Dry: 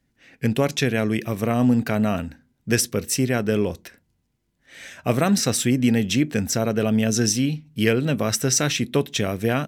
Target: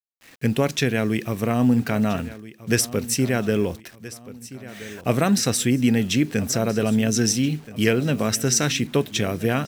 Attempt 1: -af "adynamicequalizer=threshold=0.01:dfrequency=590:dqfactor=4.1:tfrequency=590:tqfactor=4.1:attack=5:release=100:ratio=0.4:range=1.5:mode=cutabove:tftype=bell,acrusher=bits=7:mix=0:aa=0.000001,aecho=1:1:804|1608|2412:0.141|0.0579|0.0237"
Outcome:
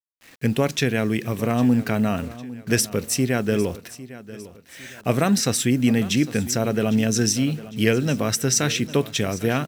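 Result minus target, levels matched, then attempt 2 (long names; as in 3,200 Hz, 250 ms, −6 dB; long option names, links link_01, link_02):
echo 522 ms early
-af "adynamicequalizer=threshold=0.01:dfrequency=590:dqfactor=4.1:tfrequency=590:tqfactor=4.1:attack=5:release=100:ratio=0.4:range=1.5:mode=cutabove:tftype=bell,acrusher=bits=7:mix=0:aa=0.000001,aecho=1:1:1326|2652|3978:0.141|0.0579|0.0237"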